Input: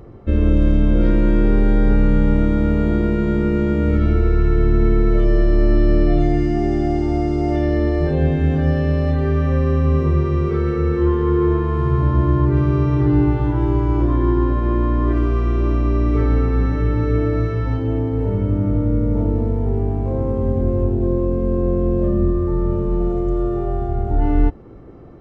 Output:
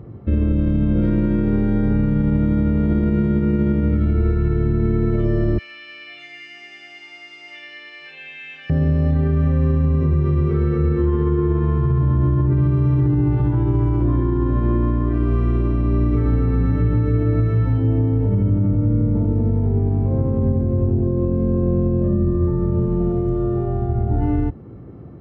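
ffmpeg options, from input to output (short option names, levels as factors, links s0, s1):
-filter_complex "[0:a]asettb=1/sr,asplit=3[s0][s1][s2];[s0]atrim=end=5.584[s3];[s1]atrim=start=5.58:end=8.7,asetpts=PTS-STARTPTS,afade=t=in:d=0.004:c=qsin,afade=t=out:st=3.116:d=0.004:c=qsin,highpass=f=2500:t=q:w=5.1[s4];[s2]atrim=start=8.696[s5];[s3][s4]acrossfade=d=0.004:c1=hsin:c2=qsin[s6];[s6][s5]acrossfade=d=0.004:c1=qsin:c2=hsin,highpass=98,bass=f=250:g=12,treble=f=4000:g=-7,alimiter=limit=0.422:level=0:latency=1:release=49,volume=0.708"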